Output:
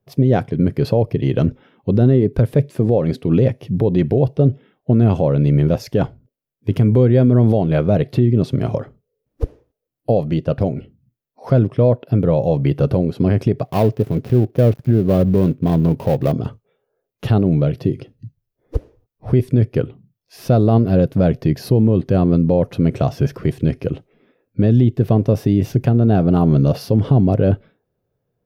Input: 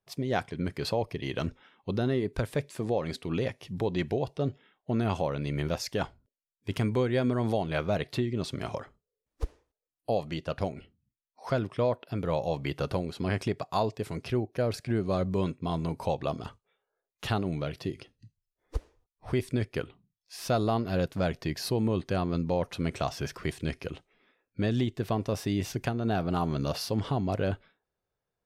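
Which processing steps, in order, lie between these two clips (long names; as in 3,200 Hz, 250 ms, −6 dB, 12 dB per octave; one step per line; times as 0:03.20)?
0:13.65–0:16.32: gap after every zero crossing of 0.19 ms
graphic EQ with 10 bands 125 Hz +11 dB, 250 Hz +5 dB, 500 Hz +6 dB, 1,000 Hz −5 dB, 2,000 Hz −4 dB, 4,000 Hz −5 dB, 8,000 Hz −11 dB
boost into a limiter +12.5 dB
level −4 dB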